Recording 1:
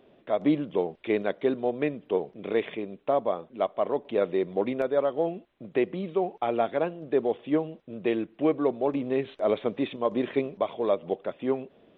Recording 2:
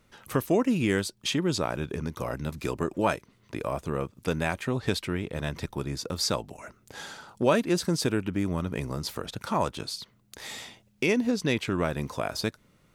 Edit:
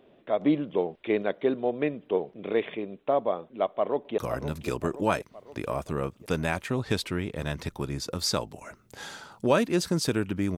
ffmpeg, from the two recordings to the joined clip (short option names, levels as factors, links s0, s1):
-filter_complex "[0:a]apad=whole_dur=10.57,atrim=end=10.57,atrim=end=4.182[s0];[1:a]atrim=start=2.148:end=8.54[s1];[s0][s1]acrossfade=d=0.004:c1=hsin:c2=hsin,asplit=2[s2][s3];[s3]afade=t=in:st=3.74:d=0.01,afade=t=out:st=4.18:d=0.01,aecho=0:1:520|1040|1560|2080|2600|3120:0.316228|0.173925|0.0956589|0.0526124|0.0289368|0.0159152[s4];[s2][s4]amix=inputs=2:normalize=0"